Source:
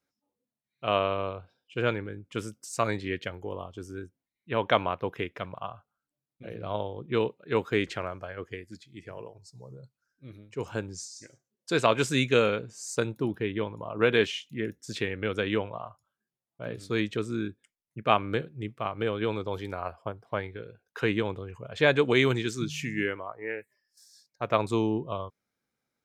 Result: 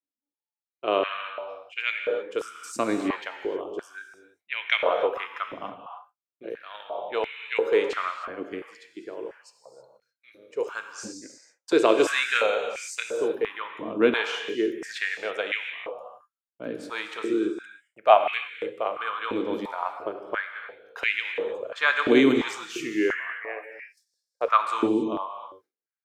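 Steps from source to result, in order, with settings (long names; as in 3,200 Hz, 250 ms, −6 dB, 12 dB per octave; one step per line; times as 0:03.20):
reverb whose tail is shaped and stops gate 340 ms flat, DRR 5 dB
noise gate with hold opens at −44 dBFS
high-pass on a step sequencer 2.9 Hz 270–2,200 Hz
level −1 dB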